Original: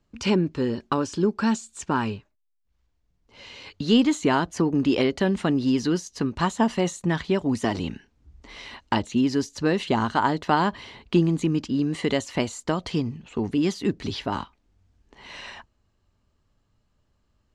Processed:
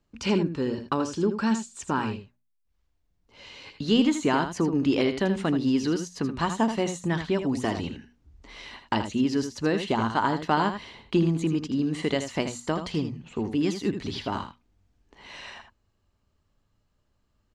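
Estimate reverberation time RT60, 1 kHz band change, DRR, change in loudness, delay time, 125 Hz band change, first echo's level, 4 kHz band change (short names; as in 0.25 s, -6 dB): none, -2.0 dB, none, -2.0 dB, 80 ms, -2.5 dB, -9.0 dB, -2.0 dB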